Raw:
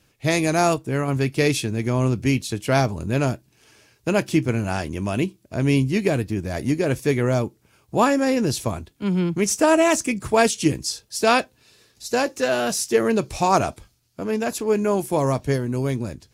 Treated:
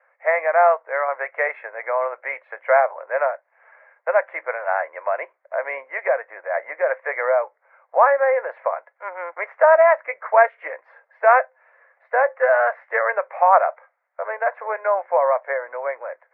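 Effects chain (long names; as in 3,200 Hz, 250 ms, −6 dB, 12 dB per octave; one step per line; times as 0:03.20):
Chebyshev band-pass filter 520–2,100 Hz, order 5
0:12.53–0:13.36: dynamic equaliser 1,700 Hz, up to +3 dB, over −37 dBFS, Q 1.1
in parallel at −2 dB: downward compressor, threshold −29 dBFS, peak gain reduction 14.5 dB
on the sum: level +4 dB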